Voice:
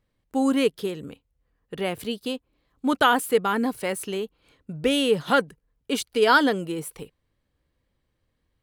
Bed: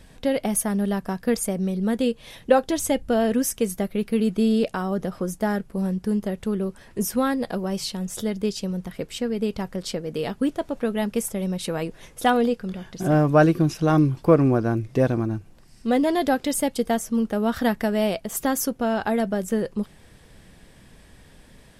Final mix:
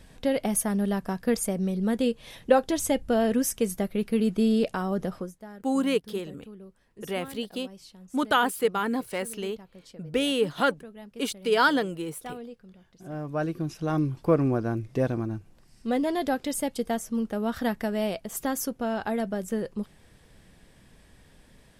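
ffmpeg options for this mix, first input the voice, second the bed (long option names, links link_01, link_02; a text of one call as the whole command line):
ffmpeg -i stem1.wav -i stem2.wav -filter_complex "[0:a]adelay=5300,volume=-3.5dB[link_01];[1:a]volume=12dB,afade=type=out:start_time=5.13:duration=0.2:silence=0.133352,afade=type=in:start_time=13.02:duration=1.32:silence=0.188365[link_02];[link_01][link_02]amix=inputs=2:normalize=0" out.wav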